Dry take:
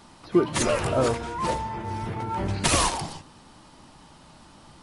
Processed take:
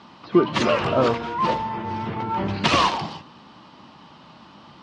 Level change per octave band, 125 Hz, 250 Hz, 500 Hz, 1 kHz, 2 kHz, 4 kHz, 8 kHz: 0.0, +4.0, +3.0, +5.5, +4.0, +4.0, −11.0 decibels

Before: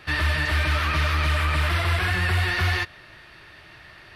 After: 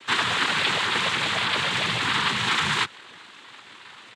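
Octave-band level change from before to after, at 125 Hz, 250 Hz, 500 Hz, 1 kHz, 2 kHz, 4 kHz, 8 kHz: −13.5, 0.0, −0.5, +2.5, +0.5, +6.5, +6.0 decibels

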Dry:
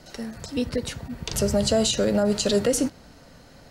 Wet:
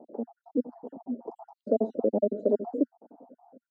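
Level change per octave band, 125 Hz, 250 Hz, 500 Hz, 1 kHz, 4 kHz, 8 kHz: below −15 dB, −6.0 dB, −4.5 dB, −7.0 dB, below −40 dB, below −40 dB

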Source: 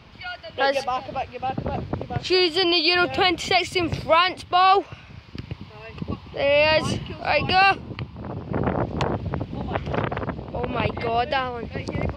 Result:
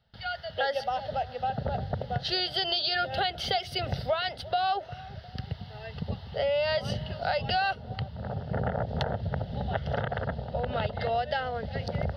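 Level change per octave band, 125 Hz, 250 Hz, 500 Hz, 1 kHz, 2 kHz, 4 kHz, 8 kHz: −3.0 dB, −11.0 dB, −7.0 dB, −8.0 dB, −9.5 dB, −6.5 dB, below −10 dB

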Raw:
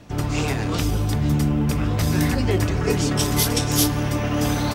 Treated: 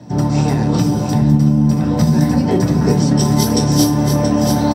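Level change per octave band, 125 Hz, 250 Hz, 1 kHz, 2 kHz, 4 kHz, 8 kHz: +7.0, +9.5, +6.5, −2.0, +1.5, +2.0 decibels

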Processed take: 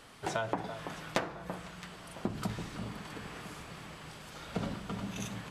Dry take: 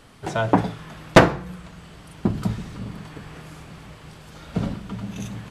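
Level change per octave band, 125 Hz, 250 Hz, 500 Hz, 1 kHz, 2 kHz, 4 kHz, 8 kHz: −15.0, −14.5, −15.5, −14.0, −14.0, −10.5, −7.5 decibels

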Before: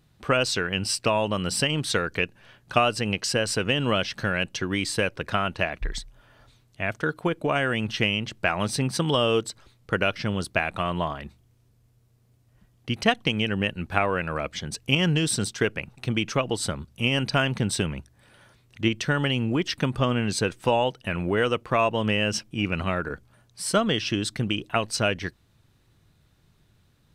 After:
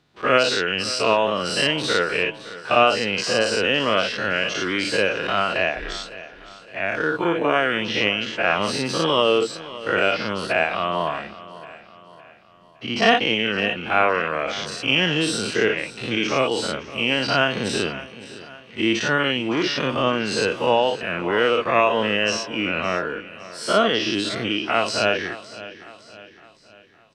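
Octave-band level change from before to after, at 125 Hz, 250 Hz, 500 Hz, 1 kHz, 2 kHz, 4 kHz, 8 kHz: −5.5, +1.5, +5.5, +6.0, +6.0, +5.0, −1.0 decibels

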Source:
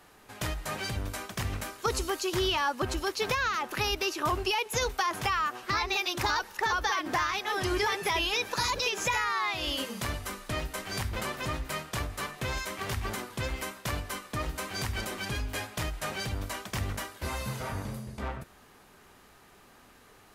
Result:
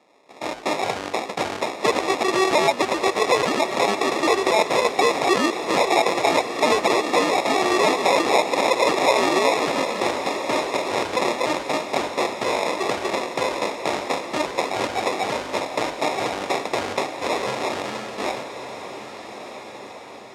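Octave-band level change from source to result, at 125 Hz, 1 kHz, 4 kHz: −4.5, +10.5, +6.0 decibels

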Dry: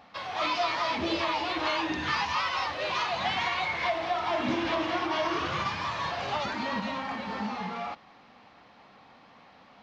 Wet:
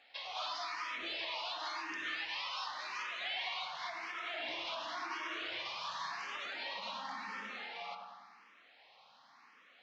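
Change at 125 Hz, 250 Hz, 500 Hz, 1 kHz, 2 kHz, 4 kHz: below −25 dB, −22.0 dB, −17.0 dB, −12.5 dB, −8.5 dB, −6.5 dB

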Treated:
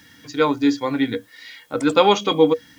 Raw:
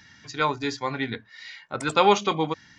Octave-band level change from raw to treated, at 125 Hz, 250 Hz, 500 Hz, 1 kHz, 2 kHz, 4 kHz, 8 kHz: +2.0, +10.5, +7.5, +1.5, +1.0, +5.0, +1.0 decibels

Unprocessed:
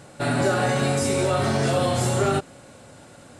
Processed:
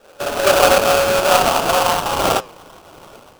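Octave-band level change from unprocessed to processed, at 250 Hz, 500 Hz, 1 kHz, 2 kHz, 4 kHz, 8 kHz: −2.0, +7.5, +10.5, +8.5, +11.5, +7.5 decibels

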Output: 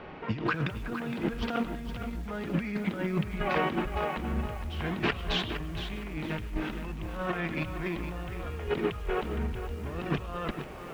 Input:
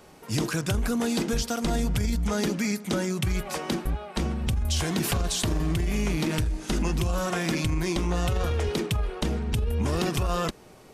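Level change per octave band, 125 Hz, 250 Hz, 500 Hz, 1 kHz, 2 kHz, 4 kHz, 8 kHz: −7.5, −5.0, −3.5, −1.0, −1.0, −6.0, −22.5 decibels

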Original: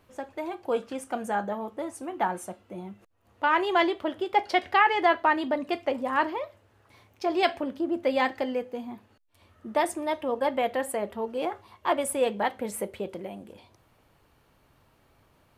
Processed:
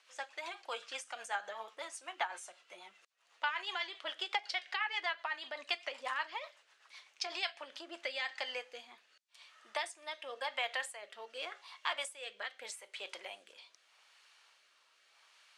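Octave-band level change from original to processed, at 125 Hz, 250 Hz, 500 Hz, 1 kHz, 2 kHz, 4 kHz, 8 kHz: can't be measured, −30.0 dB, −19.0 dB, −15.0 dB, −7.5 dB, −1.5 dB, −8.0 dB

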